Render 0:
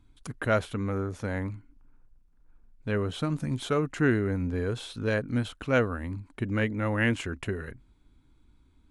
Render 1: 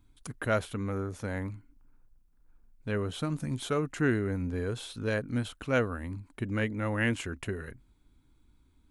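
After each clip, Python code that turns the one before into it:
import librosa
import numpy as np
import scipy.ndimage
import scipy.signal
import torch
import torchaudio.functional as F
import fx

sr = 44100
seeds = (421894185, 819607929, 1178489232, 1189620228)

y = fx.high_shelf(x, sr, hz=9400.0, db=10.5)
y = y * librosa.db_to_amplitude(-3.0)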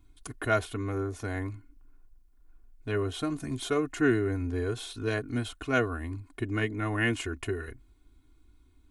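y = x + 0.79 * np.pad(x, (int(2.8 * sr / 1000.0), 0))[:len(x)]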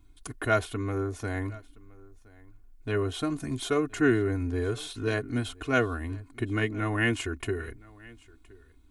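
y = x + 10.0 ** (-23.5 / 20.0) * np.pad(x, (int(1019 * sr / 1000.0), 0))[:len(x)]
y = y * librosa.db_to_amplitude(1.5)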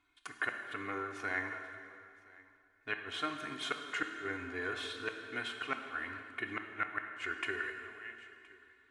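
y = fx.bandpass_q(x, sr, hz=1800.0, q=1.4)
y = fx.gate_flip(y, sr, shuts_db=-24.0, range_db=-34)
y = fx.rev_plate(y, sr, seeds[0], rt60_s=2.4, hf_ratio=0.85, predelay_ms=0, drr_db=4.5)
y = y * librosa.db_to_amplitude(4.0)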